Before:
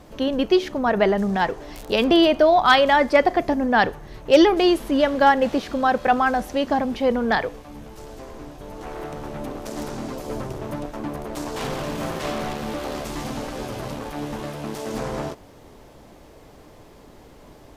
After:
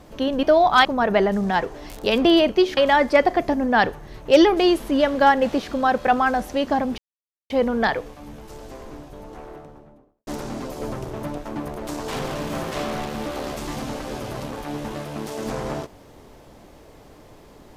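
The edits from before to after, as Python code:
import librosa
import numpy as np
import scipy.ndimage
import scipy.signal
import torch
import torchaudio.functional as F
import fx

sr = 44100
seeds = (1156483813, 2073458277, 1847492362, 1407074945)

y = fx.studio_fade_out(x, sr, start_s=8.26, length_s=1.49)
y = fx.edit(y, sr, fx.swap(start_s=0.43, length_s=0.28, other_s=2.35, other_length_s=0.42),
    fx.insert_silence(at_s=6.98, length_s=0.52), tone=tone)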